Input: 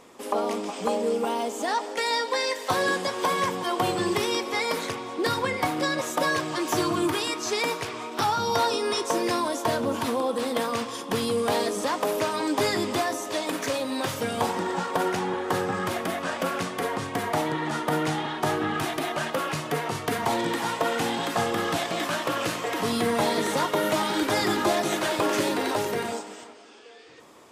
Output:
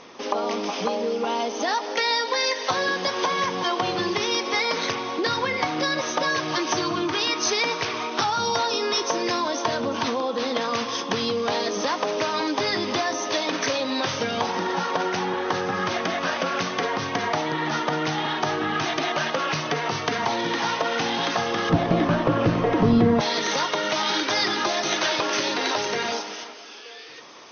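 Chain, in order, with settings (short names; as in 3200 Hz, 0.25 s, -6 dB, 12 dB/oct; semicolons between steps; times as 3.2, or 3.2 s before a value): brick-wall FIR low-pass 6400 Hz; bell 160 Hz +2 dB; compressor 6:1, threshold -27 dBFS, peak gain reduction 8.5 dB; tilt +1.5 dB/oct, from 21.69 s -4 dB/oct, from 23.19 s +3 dB/oct; gain +6.5 dB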